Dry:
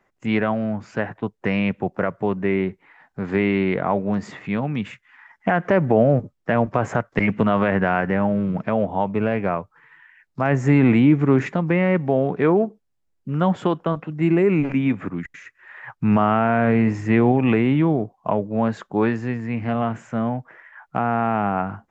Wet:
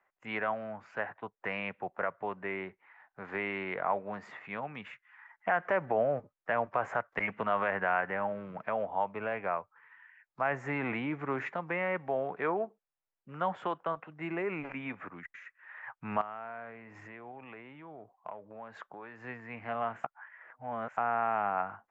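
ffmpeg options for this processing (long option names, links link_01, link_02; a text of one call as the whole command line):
ffmpeg -i in.wav -filter_complex "[0:a]asettb=1/sr,asplit=3[link_01][link_02][link_03];[link_01]atrim=end=16.214[link_04];[link_02]atrim=start=16.21:end=19.24,asetpts=PTS-STARTPTS,afade=type=in:duration=0.004:curve=qsin,afade=type=out:start_time=3.026:duration=0.004:curve=qsin,acompressor=threshold=-28dB:ratio=8:attack=3.2:release=140:knee=1:detection=peak[link_05];[link_03]atrim=start=19.236[link_06];[link_04][link_05]acrossfade=duration=0.004:curve1=hsin:curve2=qsin[link_07];[link_07][link_06]acrossfade=duration=0.004:curve1=qsin:curve2=hsin,asplit=3[link_08][link_09][link_10];[link_08]atrim=end=20.042[link_11];[link_09]atrim=start=20.038:end=20.972,asetpts=PTS-STARTPTS,areverse[link_12];[link_10]atrim=start=20.968[link_13];[link_11][link_12]acrossfade=duration=0.004:curve1=hsin:curve2=hsin[link_14];[link_14][link_13]acrossfade=duration=0.004:curve1=hsin:curve2=hsin,acrossover=split=580 2700:gain=0.126 1 0.178[link_15][link_16][link_17];[link_15][link_16][link_17]amix=inputs=3:normalize=0,volume=-5.5dB" out.wav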